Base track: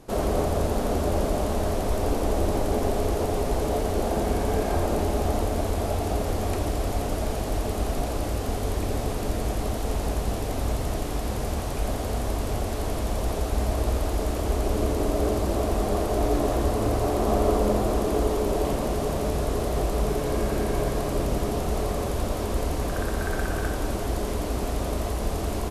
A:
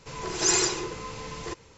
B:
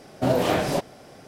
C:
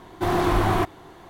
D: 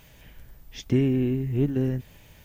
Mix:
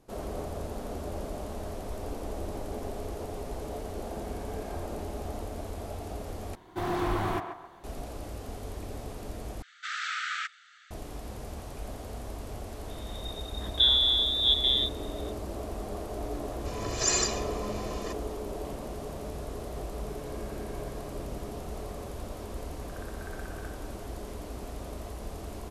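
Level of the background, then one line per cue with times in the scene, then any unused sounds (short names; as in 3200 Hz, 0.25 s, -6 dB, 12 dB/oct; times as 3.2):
base track -12 dB
6.55 replace with C -9 dB + narrowing echo 0.136 s, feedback 40%, level -5.5 dB
9.62 replace with C -1 dB + brick-wall FIR band-pass 1200–8100 Hz
12.88 add D -1.5 dB + inverted band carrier 3700 Hz
16.59 add A -5.5 dB + comb 1.7 ms, depth 74%
not used: B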